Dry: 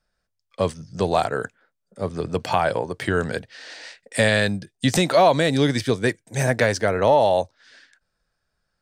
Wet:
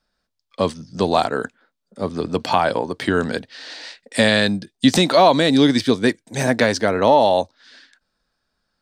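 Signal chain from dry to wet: graphic EQ 125/250/1000/4000 Hz -4/+10/+5/+8 dB; gain -1 dB

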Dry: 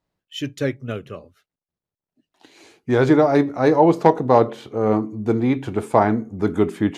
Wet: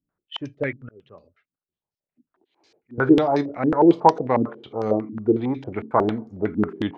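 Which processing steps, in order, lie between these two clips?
0.82–2.98 auto swell 0.643 s; stepped low-pass 11 Hz 250–5100 Hz; gain -6.5 dB

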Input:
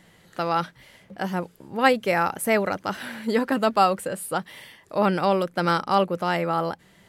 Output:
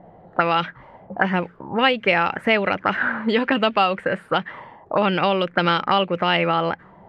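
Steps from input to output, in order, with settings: compressor 3:1, threshold -25 dBFS, peak gain reduction 10 dB; envelope low-pass 690–3000 Hz up, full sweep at -24 dBFS; gain +7 dB

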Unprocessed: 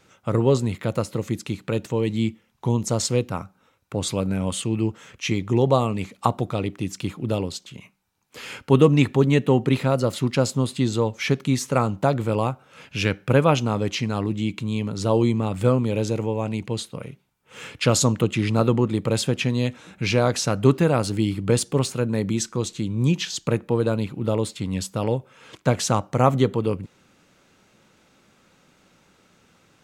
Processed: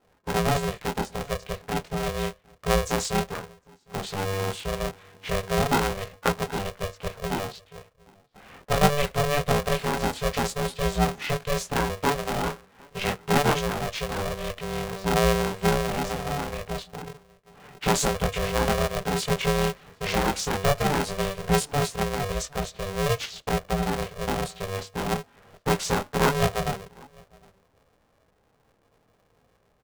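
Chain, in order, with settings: low-pass opened by the level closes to 820 Hz, open at -17.5 dBFS; outdoor echo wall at 130 m, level -26 dB; chorus voices 6, 0.12 Hz, delay 21 ms, depth 4.9 ms; polarity switched at an audio rate 290 Hz; gain -1.5 dB

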